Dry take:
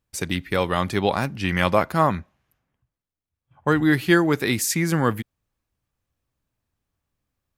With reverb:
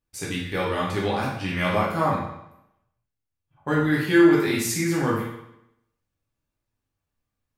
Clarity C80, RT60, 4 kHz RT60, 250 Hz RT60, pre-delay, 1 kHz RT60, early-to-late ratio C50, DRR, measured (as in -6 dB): 5.5 dB, 0.80 s, 0.75 s, 0.85 s, 9 ms, 0.80 s, 2.0 dB, -5.5 dB